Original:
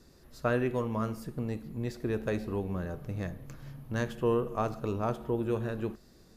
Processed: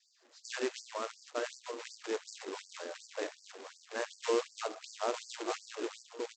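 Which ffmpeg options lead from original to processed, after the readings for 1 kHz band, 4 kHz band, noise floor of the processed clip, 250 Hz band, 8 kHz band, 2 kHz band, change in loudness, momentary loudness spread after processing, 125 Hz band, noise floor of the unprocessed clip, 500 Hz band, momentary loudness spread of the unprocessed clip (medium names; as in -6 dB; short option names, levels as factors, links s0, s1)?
-3.5 dB, +8.0 dB, -66 dBFS, -11.5 dB, +9.5 dB, -1.5 dB, -6.0 dB, 11 LU, under -40 dB, -58 dBFS, -4.5 dB, 9 LU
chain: -af "adynamicequalizer=threshold=0.01:dfrequency=550:dqfactor=1.1:tfrequency=550:tqfactor=1.1:attack=5:release=100:ratio=0.375:range=1.5:mode=boostabove:tftype=bell,aecho=1:1:903|1806|2709:0.562|0.101|0.0182,aresample=16000,acrusher=bits=2:mode=log:mix=0:aa=0.000001,aresample=44100,afftfilt=real='re*gte(b*sr/1024,250*pow(4500/250,0.5+0.5*sin(2*PI*2.7*pts/sr)))':imag='im*gte(b*sr/1024,250*pow(4500/250,0.5+0.5*sin(2*PI*2.7*pts/sr)))':win_size=1024:overlap=0.75,volume=0.631"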